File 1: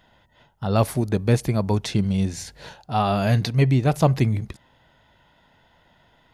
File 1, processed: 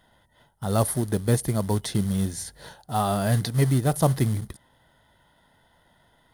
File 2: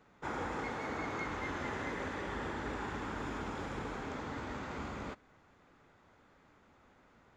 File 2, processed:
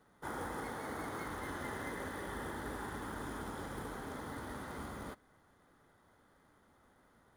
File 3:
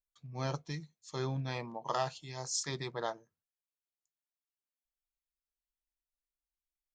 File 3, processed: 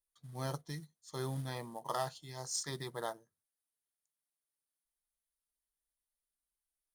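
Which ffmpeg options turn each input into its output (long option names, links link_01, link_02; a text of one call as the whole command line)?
ffmpeg -i in.wav -af "acrusher=bits=5:mode=log:mix=0:aa=0.000001,superequalizer=12b=0.398:16b=3.55,volume=-3dB" out.wav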